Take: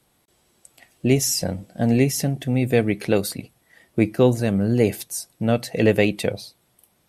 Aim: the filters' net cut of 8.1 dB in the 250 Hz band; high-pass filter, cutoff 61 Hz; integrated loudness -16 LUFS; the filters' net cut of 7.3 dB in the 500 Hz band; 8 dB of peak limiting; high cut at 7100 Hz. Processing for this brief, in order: HPF 61 Hz; LPF 7100 Hz; bell 250 Hz -8.5 dB; bell 500 Hz -6 dB; gain +12.5 dB; limiter -2.5 dBFS

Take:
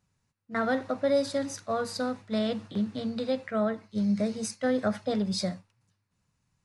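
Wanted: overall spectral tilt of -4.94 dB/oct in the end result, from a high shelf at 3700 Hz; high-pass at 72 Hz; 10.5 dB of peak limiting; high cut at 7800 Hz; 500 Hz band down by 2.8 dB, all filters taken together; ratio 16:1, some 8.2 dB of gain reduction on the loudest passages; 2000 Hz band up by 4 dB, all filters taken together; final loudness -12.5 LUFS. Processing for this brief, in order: HPF 72 Hz; LPF 7800 Hz; bell 500 Hz -3.5 dB; bell 2000 Hz +7 dB; high shelf 3700 Hz -6.5 dB; compressor 16:1, threshold -31 dBFS; gain +28 dB; limiter -3.5 dBFS

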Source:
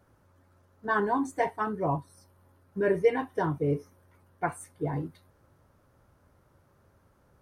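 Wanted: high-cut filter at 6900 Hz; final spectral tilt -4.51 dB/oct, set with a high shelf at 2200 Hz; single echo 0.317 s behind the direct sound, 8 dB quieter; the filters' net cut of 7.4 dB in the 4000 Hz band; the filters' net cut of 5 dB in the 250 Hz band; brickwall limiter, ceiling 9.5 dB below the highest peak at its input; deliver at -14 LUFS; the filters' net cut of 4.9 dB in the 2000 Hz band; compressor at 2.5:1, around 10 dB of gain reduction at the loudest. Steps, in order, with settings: LPF 6900 Hz; bell 250 Hz -7 dB; bell 2000 Hz -4 dB; high shelf 2200 Hz -3.5 dB; bell 4000 Hz -5 dB; compressor 2.5:1, threshold -34 dBFS; limiter -32 dBFS; echo 0.317 s -8 dB; gain +29 dB

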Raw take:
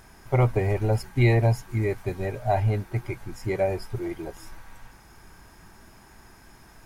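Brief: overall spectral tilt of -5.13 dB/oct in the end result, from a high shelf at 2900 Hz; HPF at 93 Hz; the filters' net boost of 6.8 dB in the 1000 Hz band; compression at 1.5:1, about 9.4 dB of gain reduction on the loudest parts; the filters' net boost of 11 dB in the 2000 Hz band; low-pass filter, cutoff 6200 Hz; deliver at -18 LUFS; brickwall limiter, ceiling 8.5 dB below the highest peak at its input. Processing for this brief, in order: HPF 93 Hz; LPF 6200 Hz; bell 1000 Hz +8 dB; bell 2000 Hz +7.5 dB; high shelf 2900 Hz +8 dB; compressor 1.5:1, threshold -40 dBFS; gain +17.5 dB; limiter -4.5 dBFS

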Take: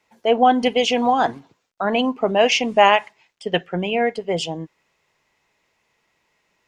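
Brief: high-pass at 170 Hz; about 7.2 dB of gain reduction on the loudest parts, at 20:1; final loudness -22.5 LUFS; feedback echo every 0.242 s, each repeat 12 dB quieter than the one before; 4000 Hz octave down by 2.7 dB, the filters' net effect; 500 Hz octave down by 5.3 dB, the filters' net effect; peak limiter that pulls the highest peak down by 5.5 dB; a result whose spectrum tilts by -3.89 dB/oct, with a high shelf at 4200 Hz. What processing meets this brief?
HPF 170 Hz; bell 500 Hz -6.5 dB; bell 4000 Hz -6 dB; high shelf 4200 Hz +3 dB; compressor 20:1, threshold -18 dBFS; limiter -16 dBFS; feedback echo 0.242 s, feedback 25%, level -12 dB; gain +5 dB

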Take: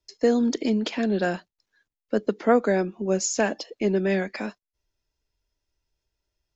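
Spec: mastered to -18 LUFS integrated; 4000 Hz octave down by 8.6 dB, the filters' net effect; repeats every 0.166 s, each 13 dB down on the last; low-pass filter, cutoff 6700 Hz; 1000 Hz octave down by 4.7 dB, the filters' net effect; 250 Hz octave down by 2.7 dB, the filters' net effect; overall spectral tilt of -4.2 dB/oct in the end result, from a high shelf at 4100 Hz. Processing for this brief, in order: LPF 6700 Hz; bell 250 Hz -3 dB; bell 1000 Hz -7 dB; bell 4000 Hz -7.5 dB; high shelf 4100 Hz -5 dB; feedback echo 0.166 s, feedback 22%, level -13 dB; gain +9.5 dB

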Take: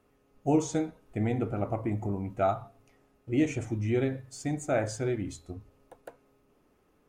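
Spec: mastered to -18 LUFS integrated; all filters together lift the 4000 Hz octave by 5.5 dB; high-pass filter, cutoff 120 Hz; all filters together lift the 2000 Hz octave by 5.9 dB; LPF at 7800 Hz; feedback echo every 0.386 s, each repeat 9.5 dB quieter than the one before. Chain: HPF 120 Hz; LPF 7800 Hz; bell 2000 Hz +6 dB; bell 4000 Hz +5.5 dB; feedback echo 0.386 s, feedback 33%, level -9.5 dB; gain +12.5 dB

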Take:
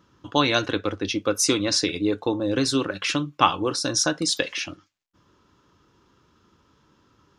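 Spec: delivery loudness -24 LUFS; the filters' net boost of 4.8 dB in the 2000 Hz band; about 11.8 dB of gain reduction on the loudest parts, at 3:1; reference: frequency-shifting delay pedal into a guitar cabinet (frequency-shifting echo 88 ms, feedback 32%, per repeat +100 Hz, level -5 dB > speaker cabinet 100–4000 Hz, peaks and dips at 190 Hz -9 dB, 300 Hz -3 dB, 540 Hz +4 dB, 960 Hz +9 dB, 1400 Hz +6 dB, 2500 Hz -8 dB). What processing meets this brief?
bell 2000 Hz +5.5 dB; compressor 3:1, threshold -27 dBFS; frequency-shifting echo 88 ms, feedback 32%, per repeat +100 Hz, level -5 dB; speaker cabinet 100–4000 Hz, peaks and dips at 190 Hz -9 dB, 300 Hz -3 dB, 540 Hz +4 dB, 960 Hz +9 dB, 1400 Hz +6 dB, 2500 Hz -8 dB; gain +4 dB

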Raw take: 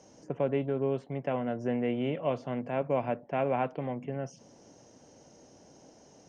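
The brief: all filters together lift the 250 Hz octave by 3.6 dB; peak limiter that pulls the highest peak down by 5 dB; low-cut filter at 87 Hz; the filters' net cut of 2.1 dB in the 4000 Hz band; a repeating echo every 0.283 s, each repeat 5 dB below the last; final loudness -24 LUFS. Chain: HPF 87 Hz; bell 250 Hz +4 dB; bell 4000 Hz -3.5 dB; limiter -21.5 dBFS; feedback echo 0.283 s, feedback 56%, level -5 dB; gain +7 dB

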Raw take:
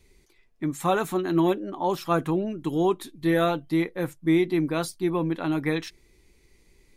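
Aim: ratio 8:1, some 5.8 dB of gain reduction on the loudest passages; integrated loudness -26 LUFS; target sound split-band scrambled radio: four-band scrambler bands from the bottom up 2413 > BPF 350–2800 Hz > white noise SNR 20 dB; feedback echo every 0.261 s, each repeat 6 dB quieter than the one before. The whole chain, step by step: compressor 8:1, threshold -23 dBFS; feedback echo 0.261 s, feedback 50%, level -6 dB; four-band scrambler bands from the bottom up 2413; BPF 350–2800 Hz; white noise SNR 20 dB; gain +3.5 dB

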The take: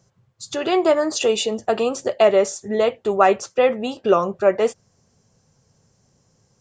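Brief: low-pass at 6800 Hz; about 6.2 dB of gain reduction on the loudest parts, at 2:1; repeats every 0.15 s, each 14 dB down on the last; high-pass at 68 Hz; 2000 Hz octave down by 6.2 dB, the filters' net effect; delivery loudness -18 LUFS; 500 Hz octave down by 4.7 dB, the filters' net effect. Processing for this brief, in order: HPF 68 Hz; LPF 6800 Hz; bell 500 Hz -5.5 dB; bell 2000 Hz -8 dB; compressor 2:1, threshold -25 dBFS; feedback echo 0.15 s, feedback 20%, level -14 dB; gain +9.5 dB

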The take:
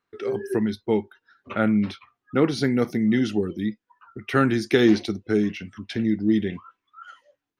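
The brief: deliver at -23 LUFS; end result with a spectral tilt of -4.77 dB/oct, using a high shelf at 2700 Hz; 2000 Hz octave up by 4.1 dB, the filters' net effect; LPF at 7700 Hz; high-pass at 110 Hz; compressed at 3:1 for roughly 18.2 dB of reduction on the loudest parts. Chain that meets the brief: HPF 110 Hz; LPF 7700 Hz; bell 2000 Hz +6.5 dB; high shelf 2700 Hz -3.5 dB; compressor 3:1, threshold -39 dBFS; gain +16 dB

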